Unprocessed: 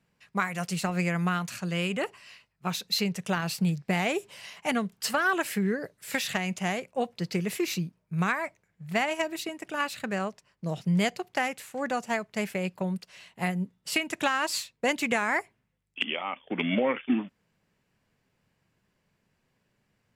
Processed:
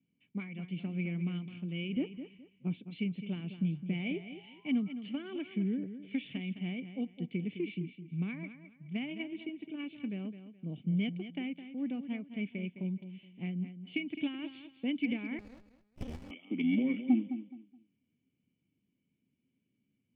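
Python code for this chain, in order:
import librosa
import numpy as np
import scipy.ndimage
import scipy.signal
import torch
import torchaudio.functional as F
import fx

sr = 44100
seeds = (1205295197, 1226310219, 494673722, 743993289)

p1 = scipy.signal.sosfilt(scipy.signal.butter(2, 78.0, 'highpass', fs=sr, output='sos'), x)
p2 = fx.spec_paint(p1, sr, seeds[0], shape='rise', start_s=3.91, length_s=1.03, low_hz=490.0, high_hz=1400.0, level_db=-41.0)
p3 = fx.formant_cascade(p2, sr, vowel='i')
p4 = fx.fold_sine(p3, sr, drive_db=3, ceiling_db=-17.5)
p5 = p3 + (p4 * librosa.db_to_amplitude(-6.0))
p6 = fx.tilt_shelf(p5, sr, db=5.5, hz=1300.0, at=(1.96, 2.89))
p7 = p6 + fx.echo_feedback(p6, sr, ms=211, feedback_pct=26, wet_db=-11.0, dry=0)
p8 = fx.running_max(p7, sr, window=65, at=(15.39, 16.31))
y = p8 * librosa.db_to_amplitude(-3.5)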